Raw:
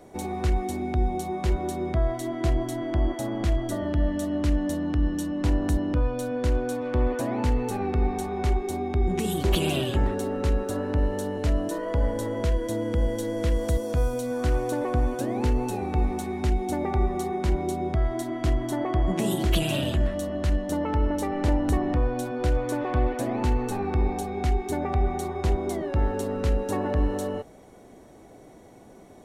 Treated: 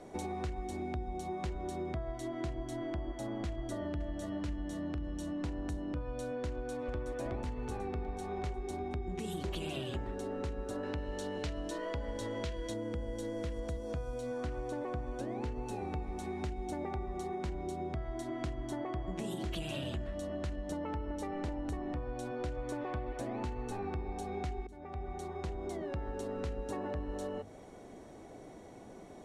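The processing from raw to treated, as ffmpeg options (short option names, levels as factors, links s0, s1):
-filter_complex "[0:a]asplit=2[s0][s1];[s1]afade=t=in:st=3.48:d=0.01,afade=t=out:st=4.27:d=0.01,aecho=0:1:520|1040|1560|2080|2600|3120:0.562341|0.253054|0.113874|0.0512434|0.0230595|0.0103768[s2];[s0][s2]amix=inputs=2:normalize=0,asplit=2[s3][s4];[s4]afade=t=in:st=6.51:d=0.01,afade=t=out:st=7.06:d=0.01,aecho=0:1:370|740|1110|1480|1850|2220|2590|2960|3330:0.707946|0.424767|0.25486|0.152916|0.0917498|0.0550499|0.0330299|0.019818|0.0118908[s5];[s3][s5]amix=inputs=2:normalize=0,asettb=1/sr,asplit=3[s6][s7][s8];[s6]atrim=end=10.834[s9];[s7]atrim=start=10.83:end=12.74,asetpts=PTS-STARTPTS,afade=t=in:d=0.004:c=qsin,afade=t=out:st=1.906:d=0.004:c=qsin,equalizer=f=3700:w=0.57:g=8.5[s10];[s8]atrim=start=12.736[s11];[s9][s10]acrossfade=d=0.004:c1=hsin:c2=qsin[s12];[s12][s11]acrossfade=d=0.004:c1=qsin:c2=hsin,asettb=1/sr,asplit=3[s13][s14][s15];[s13]atrim=end=13.604[s16];[s14]atrim=start=13.6:end=15.66,asetpts=PTS-STARTPTS,afade=t=in:d=0.004:c=qsin,afade=t=out:st=2.056:d=0.004:c=qsin,highshelf=f=6600:g=-6.5[s17];[s15]atrim=start=15.656[s18];[s16][s17]acrossfade=d=0.004:c1=hsin:c2=qsin[s19];[s19][s18]acrossfade=d=0.004:c1=qsin:c2=hsin,asplit=2[s20][s21];[s20]atrim=end=24.67,asetpts=PTS-STARTPTS,afade=t=out:st=24.666:d=0.004:c=hsin:silence=0.0668344[s22];[s21]atrim=start=24.67,asetpts=PTS-STARTPTS,afade=t=in:d=1.87:silence=0.0668344[s23];[s22][s23]concat=n=2:v=0:a=1,lowpass=8800,bandreject=f=50:t=h:w=6,bandreject=f=100:t=h:w=6,bandreject=f=150:t=h:w=6,bandreject=f=200:t=h:w=6,bandreject=f=250:t=h:w=6,acompressor=threshold=0.02:ratio=6,volume=0.841"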